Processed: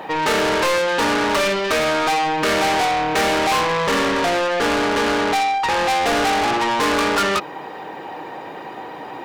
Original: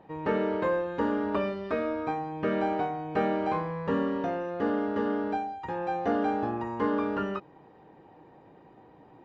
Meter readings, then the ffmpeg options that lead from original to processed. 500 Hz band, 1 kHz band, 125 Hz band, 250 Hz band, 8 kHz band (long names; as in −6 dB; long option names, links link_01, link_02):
+9.0 dB, +13.5 dB, +5.5 dB, +5.0 dB, can't be measured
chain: -filter_complex "[0:a]asplit=2[link_01][link_02];[link_02]highpass=frequency=720:poles=1,volume=31dB,asoftclip=type=tanh:threshold=-14dB[link_03];[link_01][link_03]amix=inputs=2:normalize=0,lowpass=frequency=2100:poles=1,volume=-6dB,crystalizer=i=6.5:c=0"